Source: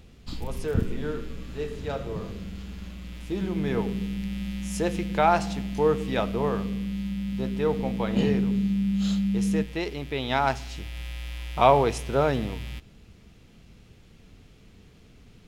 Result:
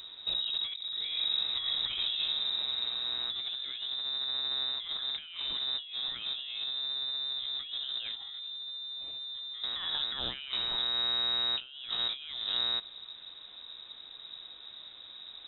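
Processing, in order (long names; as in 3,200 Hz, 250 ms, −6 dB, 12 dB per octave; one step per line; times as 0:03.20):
compressor whose output falls as the input rises −34 dBFS, ratio −1
voice inversion scrambler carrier 3,800 Hz
level −3 dB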